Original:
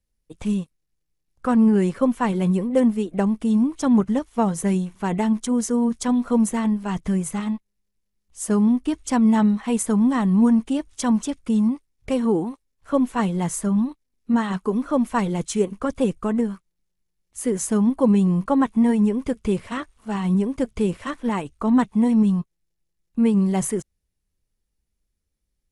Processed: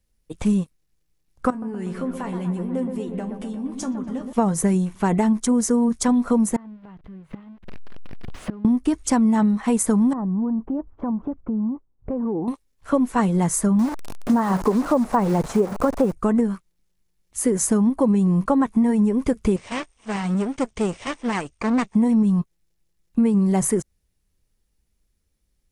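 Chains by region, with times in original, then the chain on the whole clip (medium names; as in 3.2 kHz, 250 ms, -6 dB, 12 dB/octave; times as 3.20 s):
1.50–4.33 s: compression 12:1, threshold -26 dBFS + feedback comb 87 Hz, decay 0.18 s, mix 80% + feedback echo behind a low-pass 121 ms, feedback 68%, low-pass 1.7 kHz, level -7 dB
6.56–8.65 s: jump at every zero crossing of -28.5 dBFS + distance through air 390 m + inverted gate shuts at -21 dBFS, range -26 dB
10.13–12.48 s: low-pass 1.1 kHz 24 dB/octave + compression 4:1, threshold -30 dBFS
13.79–16.13 s: one-bit delta coder 64 kbps, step -29 dBFS + de-esser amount 100% + peaking EQ 790 Hz +8 dB 1.6 oct
19.56–21.95 s: comb filter that takes the minimum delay 0.34 ms + steep low-pass 9.1 kHz 96 dB/octave + bass shelf 390 Hz -11.5 dB
whole clip: dynamic bell 3.1 kHz, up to -7 dB, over -51 dBFS, Q 1.7; compression, threshold -22 dBFS; trim +6.5 dB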